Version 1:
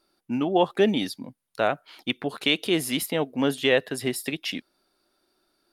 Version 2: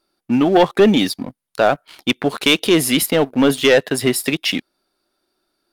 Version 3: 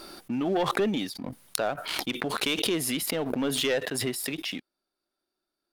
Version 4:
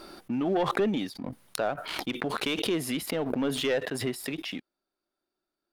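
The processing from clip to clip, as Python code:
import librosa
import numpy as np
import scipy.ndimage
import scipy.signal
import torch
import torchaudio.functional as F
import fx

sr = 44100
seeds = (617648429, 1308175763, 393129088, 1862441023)

y1 = fx.leveller(x, sr, passes=2)
y1 = F.gain(torch.from_numpy(y1), 3.5).numpy()
y2 = fx.pre_swell(y1, sr, db_per_s=26.0)
y2 = F.gain(torch.from_numpy(y2), -14.5).numpy()
y3 = fx.high_shelf(y2, sr, hz=3400.0, db=-8.0)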